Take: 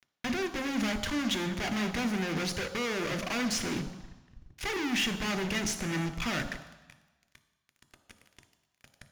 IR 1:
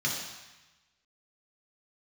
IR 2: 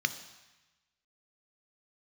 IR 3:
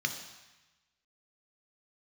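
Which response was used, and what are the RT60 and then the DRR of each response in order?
2; 1.1 s, 1.1 s, 1.1 s; -3.5 dB, 10.0 dB, 5.0 dB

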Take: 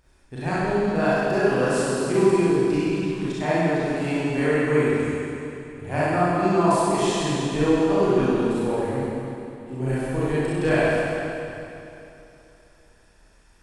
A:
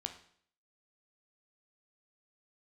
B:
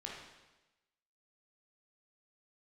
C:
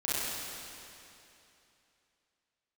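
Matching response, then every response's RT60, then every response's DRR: C; 0.60 s, 1.1 s, 2.9 s; 5.5 dB, -3.0 dB, -10.5 dB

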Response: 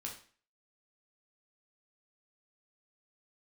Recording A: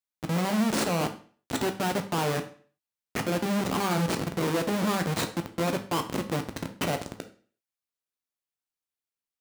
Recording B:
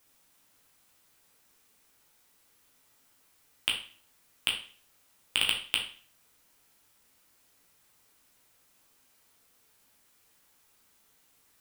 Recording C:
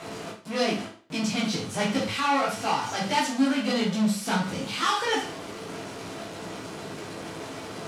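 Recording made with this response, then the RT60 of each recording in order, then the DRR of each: B; 0.45 s, 0.45 s, 0.45 s; 6.0 dB, -1.0 dB, -5.5 dB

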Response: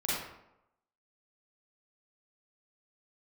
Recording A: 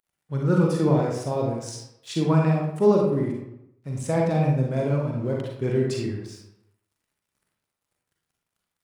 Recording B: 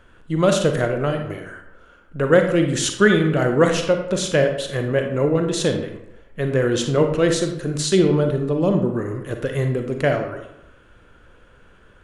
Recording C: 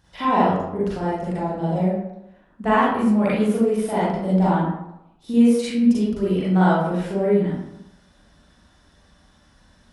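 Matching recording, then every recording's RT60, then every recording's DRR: C; 0.85 s, 0.85 s, 0.85 s; -1.5 dB, 4.5 dB, -8.5 dB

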